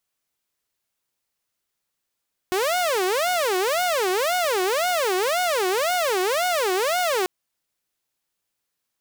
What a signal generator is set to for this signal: siren wail 364–730 Hz 1.9/s saw -17.5 dBFS 4.74 s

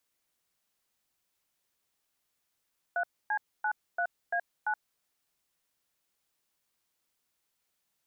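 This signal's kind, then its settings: DTMF "3C93A9", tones 74 ms, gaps 0.267 s, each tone -29.5 dBFS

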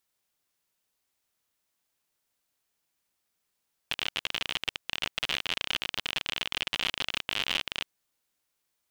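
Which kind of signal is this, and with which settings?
random clicks 55/s -13 dBFS 3.97 s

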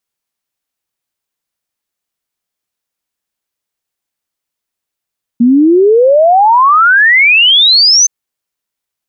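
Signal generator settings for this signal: log sweep 230 Hz -> 6300 Hz 2.67 s -3.5 dBFS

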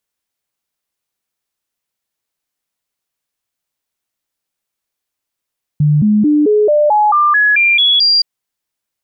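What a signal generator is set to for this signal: stepped sine 149 Hz up, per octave 2, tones 11, 0.22 s, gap 0.00 s -7.5 dBFS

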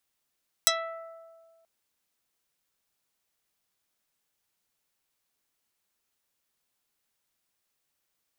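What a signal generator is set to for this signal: plucked string E5, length 0.98 s, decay 1.80 s, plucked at 0.28, dark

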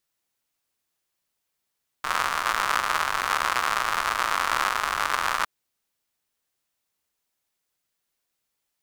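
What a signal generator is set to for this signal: rain from filtered ticks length 3.41 s, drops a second 150, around 1200 Hz, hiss -20 dB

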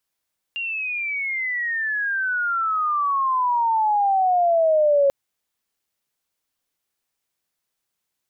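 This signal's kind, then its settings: chirp logarithmic 2800 Hz -> 550 Hz -24.5 dBFS -> -13.5 dBFS 4.54 s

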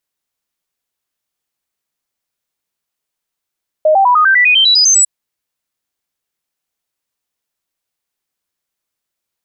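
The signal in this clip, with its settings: stepped sine 620 Hz up, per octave 3, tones 12, 0.10 s, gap 0.00 s -6 dBFS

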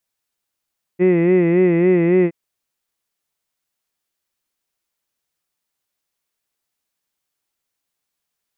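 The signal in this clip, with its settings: formant-synthesis vowel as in hid, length 1.32 s, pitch 176 Hz, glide 0 st, vibrato 3.6 Hz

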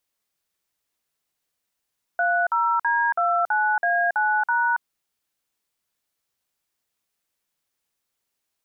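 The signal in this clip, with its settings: DTMF "30D29A9#", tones 0.278 s, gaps 50 ms, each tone -21 dBFS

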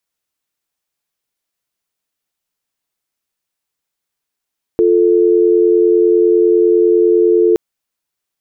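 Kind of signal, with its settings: call progress tone dial tone, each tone -10.5 dBFS 2.77 s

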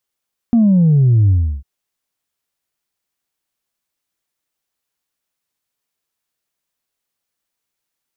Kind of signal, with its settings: sub drop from 240 Hz, over 1.10 s, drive 0.5 dB, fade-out 0.34 s, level -8.5 dB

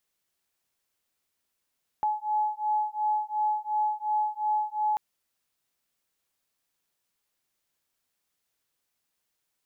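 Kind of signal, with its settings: beating tones 849 Hz, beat 2.8 Hz, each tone -28 dBFS 2.94 s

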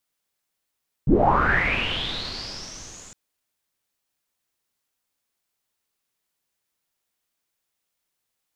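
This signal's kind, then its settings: swept filtered noise pink, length 2.06 s lowpass, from 120 Hz, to 7200 Hz, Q 9.4, linear, gain ramp -30.5 dB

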